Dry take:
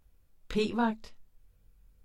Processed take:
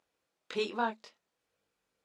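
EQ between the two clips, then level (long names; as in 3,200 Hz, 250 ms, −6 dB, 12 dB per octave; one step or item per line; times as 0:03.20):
band-pass filter 410–7,200 Hz
0.0 dB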